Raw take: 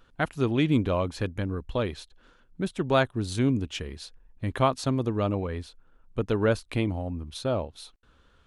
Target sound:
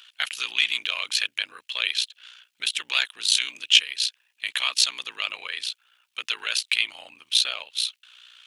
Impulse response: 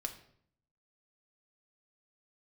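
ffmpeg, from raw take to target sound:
-af "apsyclip=27.5dB,aeval=exprs='val(0)*sin(2*PI*30*n/s)':channel_layout=same,highpass=frequency=2800:width_type=q:width=2.5,volume=-9.5dB"

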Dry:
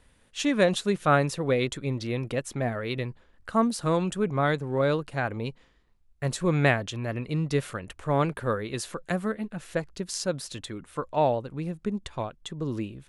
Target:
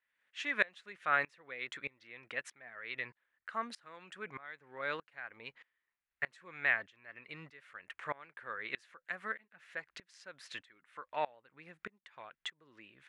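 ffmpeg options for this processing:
ffmpeg -i in.wav -filter_complex "[0:a]asplit=2[link_01][link_02];[link_02]acompressor=threshold=-32dB:ratio=6,volume=0.5dB[link_03];[link_01][link_03]amix=inputs=2:normalize=0,bandpass=frequency=1900:width_type=q:width=2.5:csg=0,aeval=exprs='val(0)*pow(10,-25*if(lt(mod(-1.6*n/s,1),2*abs(-1.6)/1000),1-mod(-1.6*n/s,1)/(2*abs(-1.6)/1000),(mod(-1.6*n/s,1)-2*abs(-1.6)/1000)/(1-2*abs(-1.6)/1000))/20)':channel_layout=same,volume=3.5dB" out.wav

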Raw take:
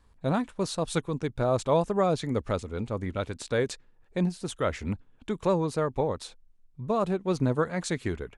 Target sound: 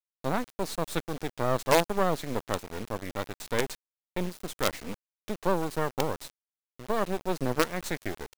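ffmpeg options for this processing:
ffmpeg -i in.wav -af "highpass=220,acrusher=bits=4:dc=4:mix=0:aa=0.000001,volume=1.5dB" out.wav

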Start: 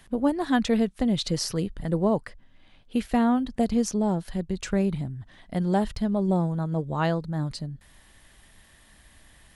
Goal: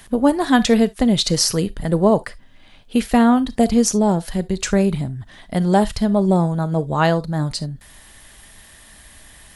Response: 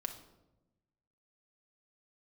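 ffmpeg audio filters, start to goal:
-filter_complex "[0:a]asplit=2[link_01][link_02];[link_02]bass=frequency=250:gain=-15,treble=frequency=4000:gain=10[link_03];[1:a]atrim=start_sample=2205,atrim=end_sample=3528[link_04];[link_03][link_04]afir=irnorm=-1:irlink=0,volume=-5.5dB[link_05];[link_01][link_05]amix=inputs=2:normalize=0,volume=6.5dB"

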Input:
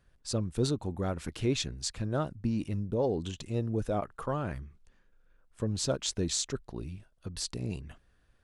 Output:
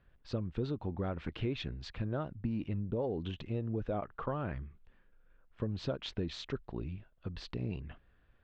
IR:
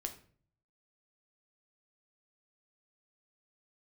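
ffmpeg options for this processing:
-af "lowpass=frequency=3300:width=0.5412,lowpass=frequency=3300:width=1.3066,acompressor=threshold=-31dB:ratio=6"

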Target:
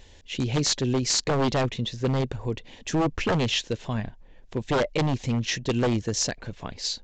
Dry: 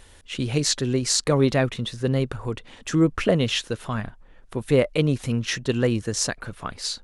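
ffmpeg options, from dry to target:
ffmpeg -i in.wav -af "equalizer=frequency=1300:width=2.8:gain=-13,aresample=16000,aeval=exprs='0.141*(abs(mod(val(0)/0.141+3,4)-2)-1)':channel_layout=same,aresample=44100" out.wav

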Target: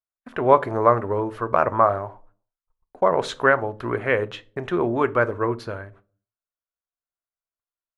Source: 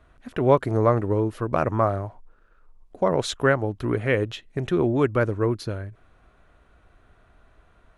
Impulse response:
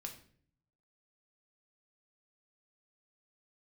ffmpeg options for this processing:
-filter_complex "[0:a]agate=range=-47dB:threshold=-45dB:ratio=16:detection=peak,equalizer=frequency=1100:width=0.43:gain=15,asplit=2[link_01][link_02];[1:a]atrim=start_sample=2205,asetrate=79380,aresample=44100[link_03];[link_02][link_03]afir=irnorm=-1:irlink=0,volume=3.5dB[link_04];[link_01][link_04]amix=inputs=2:normalize=0,volume=-11.5dB"

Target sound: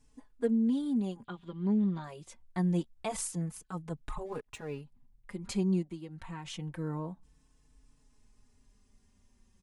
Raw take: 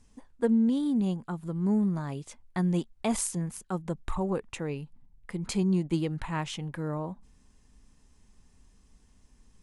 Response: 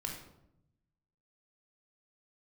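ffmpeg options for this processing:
-filter_complex "[0:a]asettb=1/sr,asplit=3[link_01][link_02][link_03];[link_01]atrim=end=1.244[link_04];[link_02]atrim=start=1.24:end=2.04,asetpts=PTS-STARTPTS,afade=type=in:duration=0.004:curve=qsin,afade=type=out:start_time=0.796:duration=0.004:curve=qsin,lowpass=frequency=3400:width_type=q:width=5.3[link_05];[link_03]atrim=start=2.036[link_06];[link_04][link_05]acrossfade=duration=0.004:curve1=hsin:curve2=qsin[link_07];[link_07][link_06]acrossfade=duration=0.004:curve1=qsin:curve2=hsin,asplit=3[link_08][link_09][link_10];[link_08]afade=type=out:start_time=4.25:duration=0.02[link_11];[link_09]aeval=exprs='sgn(val(0))*max(abs(val(0))-0.00251,0)':channel_layout=same,afade=type=in:start_time=4.25:duration=0.02,afade=type=out:start_time=4.79:duration=0.02[link_12];[link_10]afade=type=in:start_time=4.79:duration=0.02[link_13];[link_11][link_12][link_13]amix=inputs=3:normalize=0,asplit=3[link_14][link_15][link_16];[link_14]afade=type=out:start_time=5.82:duration=0.02[link_17];[link_15]acompressor=threshold=-35dB:ratio=6,afade=type=in:start_time=5.82:duration=0.02,afade=type=out:start_time=6.44:duration=0.02[link_18];[link_16]afade=type=in:start_time=6.44:duration=0.02[link_19];[link_17][link_18][link_19]amix=inputs=3:normalize=0,asplit=2[link_20][link_21];[link_21]adelay=4.2,afreqshift=-0.26[link_22];[link_20][link_22]amix=inputs=2:normalize=1,volume=-2dB"

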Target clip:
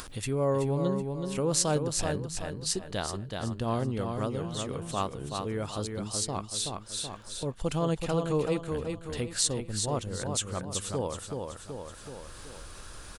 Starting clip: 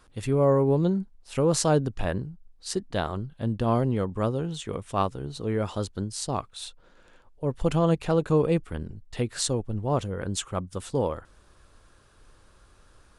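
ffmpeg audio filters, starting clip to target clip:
ffmpeg -i in.wav -af "aecho=1:1:377|754|1131|1508:0.531|0.186|0.065|0.0228,acompressor=mode=upward:threshold=-24dB:ratio=2.5,highshelf=frequency=2800:gain=9,volume=-6.5dB" out.wav

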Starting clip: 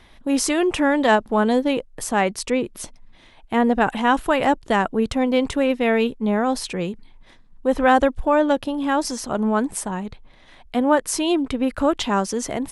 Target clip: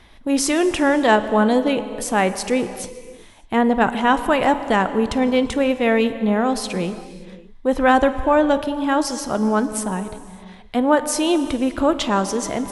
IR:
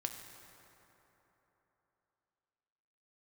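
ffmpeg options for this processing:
-filter_complex "[0:a]asplit=2[link_01][link_02];[1:a]atrim=start_sample=2205,afade=type=out:start_time=0.38:duration=0.01,atrim=end_sample=17199,asetrate=24255,aresample=44100[link_03];[link_02][link_03]afir=irnorm=-1:irlink=0,volume=-3dB[link_04];[link_01][link_04]amix=inputs=2:normalize=0,volume=-4dB"

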